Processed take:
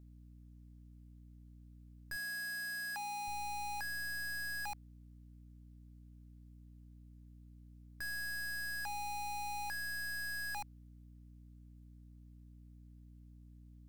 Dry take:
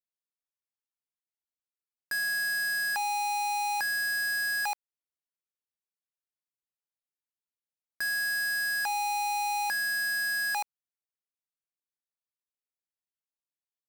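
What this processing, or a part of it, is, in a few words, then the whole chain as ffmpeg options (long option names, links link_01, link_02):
valve amplifier with mains hum: -filter_complex "[0:a]aeval=exprs='(tanh(355*val(0)+0.55)-tanh(0.55))/355':channel_layout=same,aeval=exprs='val(0)+0.000562*(sin(2*PI*60*n/s)+sin(2*PI*2*60*n/s)/2+sin(2*PI*3*60*n/s)/3+sin(2*PI*4*60*n/s)/4+sin(2*PI*5*60*n/s)/5)':channel_layout=same,asettb=1/sr,asplit=3[link_01][link_02][link_03];[link_01]atrim=end=2.164[link_04];[link_02]atrim=start=2.16:end=3.28,asetpts=PTS-STARTPTS,afade=type=in:duration=0.004:curve=qsin,afade=type=out:start_time=1.116:duration=0.004:curve=qsin,highpass=frequency=140:width=0.5412,highpass=frequency=140:width=1.3066[link_05];[link_03]atrim=start=3.276[link_06];[link_04][link_05]acrossfade=duration=0.004:curve1=hsin:curve2=qsin[link_07];[link_07][link_06]acrossfade=duration=0.004:curve1=qsin:curve2=hsin,volume=10dB"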